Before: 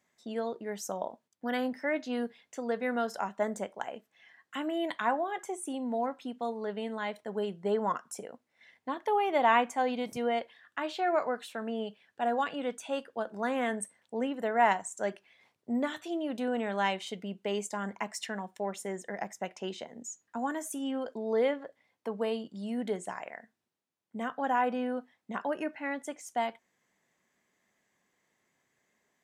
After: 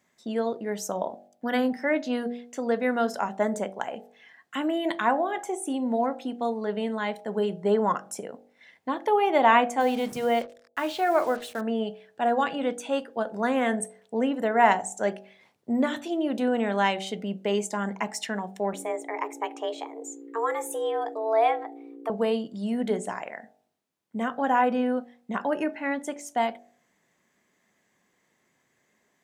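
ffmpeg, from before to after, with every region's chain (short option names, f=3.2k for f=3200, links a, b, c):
-filter_complex "[0:a]asettb=1/sr,asplit=3[a][b][c];[a]atrim=end=9.804[d];[b]atrim=start=9.8:end=11.61,asetpts=PTS-STARTPTS,afade=t=in:d=0.004:c=qsin,afade=t=out:st=1.806:d=0.004:c=qsin,bandreject=f=60:t=h:w=6,bandreject=f=120:t=h:w=6,bandreject=f=180:t=h:w=6,bandreject=f=240:t=h:w=6,bandreject=f=300:t=h:w=6,bandreject=f=360:t=h:w=6,acrusher=bits=7:mix=0:aa=0.5[e];[c]atrim=start=11.606[f];[d][e]acrossfade=d=0.004:c1=hsin:c2=qsin[g];[g][f]acrossfade=d=0.004:c1=qsin:c2=hsin,asettb=1/sr,asplit=3[h][i][j];[h]atrim=end=18.734[k];[i]atrim=start=18.73:end=22.1,asetpts=PTS-STARTPTS,afade=t=in:d=0.004:c=qsin,afade=t=out:st=3.366:d=0.004:c=qsin,equalizer=f=5k:t=o:w=0.91:g=-7.5,aeval=exprs='val(0)+0.00316*(sin(2*PI*60*n/s)+sin(2*PI*2*60*n/s)/2+sin(2*PI*3*60*n/s)/3+sin(2*PI*4*60*n/s)/4+sin(2*PI*5*60*n/s)/5)':c=same,afreqshift=220[l];[j]atrim=start=22.096[m];[k][l]acrossfade=d=0.004:c1=hsin:c2=qsin[n];[n][m]acrossfade=d=0.004:c1=qsin:c2=hsin,equalizer=f=220:t=o:w=2.7:g=3,bandreject=f=48.12:t=h:w=4,bandreject=f=96.24:t=h:w=4,bandreject=f=144.36:t=h:w=4,bandreject=f=192.48:t=h:w=4,bandreject=f=240.6:t=h:w=4,bandreject=f=288.72:t=h:w=4,bandreject=f=336.84:t=h:w=4,bandreject=f=384.96:t=h:w=4,bandreject=f=433.08:t=h:w=4,bandreject=f=481.2:t=h:w=4,bandreject=f=529.32:t=h:w=4,bandreject=f=577.44:t=h:w=4,bandreject=f=625.56:t=h:w=4,bandreject=f=673.68:t=h:w=4,bandreject=f=721.8:t=h:w=4,bandreject=f=769.92:t=h:w=4,bandreject=f=818.04:t=h:w=4,bandreject=f=866.16:t=h:w=4,volume=5dB"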